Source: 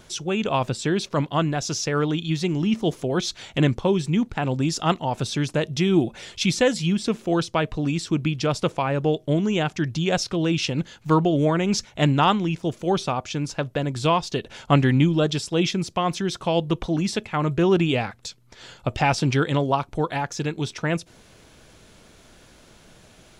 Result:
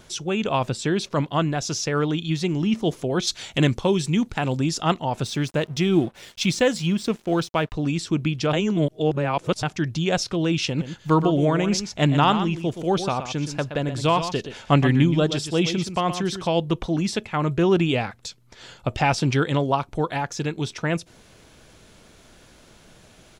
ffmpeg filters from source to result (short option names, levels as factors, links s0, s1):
-filter_complex "[0:a]asettb=1/sr,asplit=3[s0][s1][s2];[s0]atrim=end=3.274[s3];[s1]atrim=start=3.27:end=4.6,asetpts=PTS-STARTPTS,afade=t=in:d=0.004:c=qsin,afade=t=out:st=1.326:d=0.004:c=qsin,highshelf=f=3400:g=8[s4];[s2]atrim=start=4.596[s5];[s3][s4]acrossfade=d=0.004:c1=hsin:c2=qsin[s6];[s6][s5]acrossfade=d=0.004:c1=qsin:c2=hsin,asettb=1/sr,asplit=3[s7][s8][s9];[s7]atrim=end=5.244[s10];[s8]atrim=start=5.24:end=7.75,asetpts=PTS-STARTPTS,afade=t=in:d=0.004:c=qsin,afade=t=out:st=2.506:d=0.004:c=qsin,aeval=exprs='sgn(val(0))*max(abs(val(0))-0.00531,0)':c=same[s11];[s9]atrim=start=7.746[s12];[s10][s11]acrossfade=d=0.004:c1=hsin:c2=qsin[s13];[s13][s12]acrossfade=d=0.004:c1=qsin:c2=hsin,asplit=3[s14][s15][s16];[s14]afade=t=out:st=10.8:d=0.02[s17];[s15]aecho=1:1:122:0.316,afade=t=in:st=10.8:d=0.02,afade=t=out:st=16.46:d=0.02[s18];[s16]afade=t=in:st=16.46:d=0.02[s19];[s17][s18][s19]amix=inputs=3:normalize=0,asplit=3[s20][s21][s22];[s20]atrim=end=8.532[s23];[s21]atrim=start=8.528:end=9.632,asetpts=PTS-STARTPTS,areverse[s24];[s22]atrim=start=9.628[s25];[s23][s24]acrossfade=d=0.004:c1=hsin:c2=hsin[s26];[s26][s25]acrossfade=d=0.004:c1=hsin:c2=hsin"